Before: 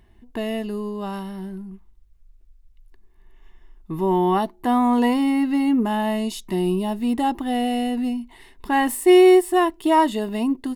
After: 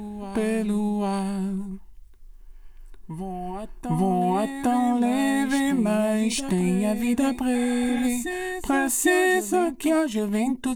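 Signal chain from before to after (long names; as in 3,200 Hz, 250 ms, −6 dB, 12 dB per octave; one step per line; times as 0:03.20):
formants moved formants −3 semitones
high-shelf EQ 5,600 Hz +6.5 dB
downward compressor 4 to 1, threshold −26 dBFS, peak gain reduction 13.5 dB
backwards echo 804 ms −10 dB
healed spectral selection 0:07.57–0:08.00, 540–3,600 Hz after
level +5.5 dB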